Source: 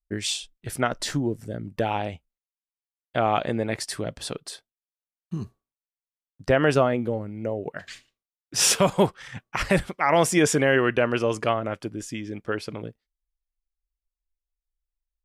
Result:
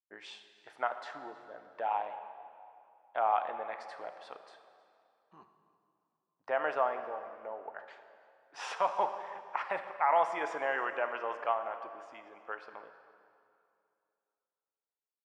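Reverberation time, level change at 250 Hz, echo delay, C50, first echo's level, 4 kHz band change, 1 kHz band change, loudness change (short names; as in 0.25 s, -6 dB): 2.5 s, -26.5 dB, 0.318 s, 9.0 dB, -22.5 dB, -21.0 dB, -3.5 dB, -10.0 dB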